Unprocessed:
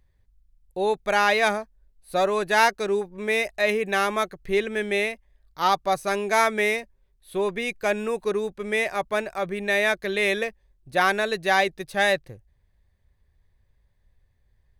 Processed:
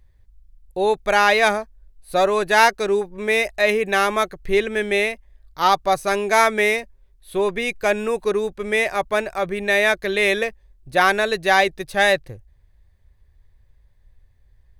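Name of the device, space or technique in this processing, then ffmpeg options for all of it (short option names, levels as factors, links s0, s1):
low shelf boost with a cut just above: -af "lowshelf=f=78:g=7,equalizer=f=190:t=o:w=0.75:g=-3,volume=1.68"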